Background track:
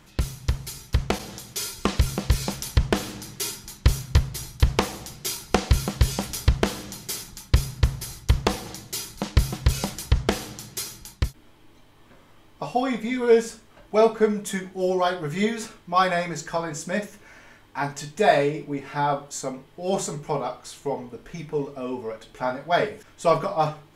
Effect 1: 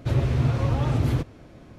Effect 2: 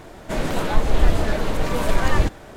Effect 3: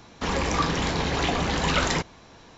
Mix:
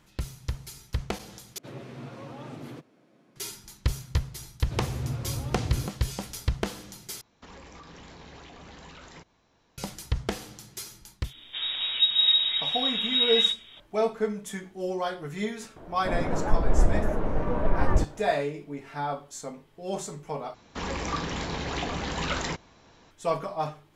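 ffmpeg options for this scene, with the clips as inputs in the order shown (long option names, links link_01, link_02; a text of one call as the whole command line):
ffmpeg -i bed.wav -i cue0.wav -i cue1.wav -i cue2.wav -filter_complex "[1:a]asplit=2[link_01][link_02];[3:a]asplit=2[link_03][link_04];[2:a]asplit=2[link_05][link_06];[0:a]volume=-7.5dB[link_07];[link_01]highpass=frequency=170:width=0.5412,highpass=frequency=170:width=1.3066[link_08];[link_02]acrossover=split=320|3000[link_09][link_10][link_11];[link_10]acompressor=threshold=-32dB:ratio=6:attack=3.2:release=140:knee=2.83:detection=peak[link_12];[link_09][link_12][link_11]amix=inputs=3:normalize=0[link_13];[link_03]alimiter=limit=-21dB:level=0:latency=1:release=104[link_14];[link_05]lowpass=frequency=3200:width_type=q:width=0.5098,lowpass=frequency=3200:width_type=q:width=0.6013,lowpass=frequency=3200:width_type=q:width=0.9,lowpass=frequency=3200:width_type=q:width=2.563,afreqshift=-3800[link_15];[link_06]lowpass=1200[link_16];[link_07]asplit=4[link_17][link_18][link_19][link_20];[link_17]atrim=end=1.584[link_21];[link_08]atrim=end=1.78,asetpts=PTS-STARTPTS,volume=-12dB[link_22];[link_18]atrim=start=3.356:end=7.214[link_23];[link_14]atrim=end=2.57,asetpts=PTS-STARTPTS,volume=-17dB[link_24];[link_19]atrim=start=9.776:end=20.544[link_25];[link_04]atrim=end=2.57,asetpts=PTS-STARTPTS,volume=-6.5dB[link_26];[link_20]atrim=start=23.106[link_27];[link_13]atrim=end=1.78,asetpts=PTS-STARTPTS,volume=-9.5dB,afade=type=in:duration=0.004:curve=hsin,afade=type=out:start_time=1.776:duration=0.004:curve=hsin,adelay=205065S[link_28];[link_15]atrim=end=2.56,asetpts=PTS-STARTPTS,volume=-9dB,afade=type=in:duration=0.004:curve=hsin,afade=type=out:start_time=2.556:duration=0.004:curve=hsin,adelay=11240[link_29];[link_16]atrim=end=2.56,asetpts=PTS-STARTPTS,volume=-4dB,afade=type=in:duration=0.004:curve=hsin,afade=type=out:start_time=2.556:duration=0.004:curve=hsin,adelay=15760[link_30];[link_21][link_22]acrossfade=duration=0.004:curve1=hsin:curve2=hsin[link_31];[link_31][link_23]acrossfade=duration=0.004:curve1=hsin:curve2=hsin[link_32];[link_32][link_24]acrossfade=duration=0.004:curve1=hsin:curve2=hsin[link_33];[link_33][link_25]acrossfade=duration=0.004:curve1=hsin:curve2=hsin[link_34];[link_34][link_26]acrossfade=duration=0.004:curve1=hsin:curve2=hsin[link_35];[link_35][link_27]acrossfade=duration=0.004:curve1=hsin:curve2=hsin[link_36];[link_36][link_28][link_29][link_30]amix=inputs=4:normalize=0" out.wav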